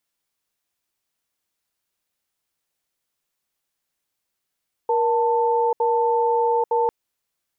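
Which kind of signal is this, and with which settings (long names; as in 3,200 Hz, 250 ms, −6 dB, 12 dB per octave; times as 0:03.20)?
tone pair in a cadence 472 Hz, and 888 Hz, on 0.84 s, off 0.07 s, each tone −19.5 dBFS 2.00 s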